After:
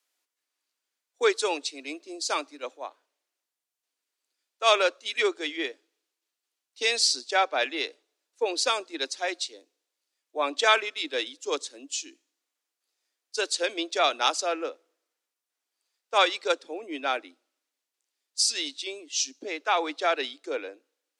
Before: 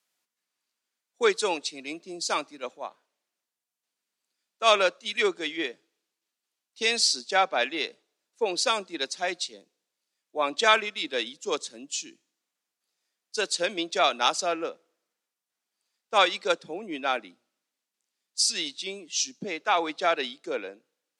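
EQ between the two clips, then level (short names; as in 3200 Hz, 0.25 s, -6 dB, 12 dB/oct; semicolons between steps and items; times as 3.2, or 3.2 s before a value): Chebyshev high-pass 270 Hz, order 5; 0.0 dB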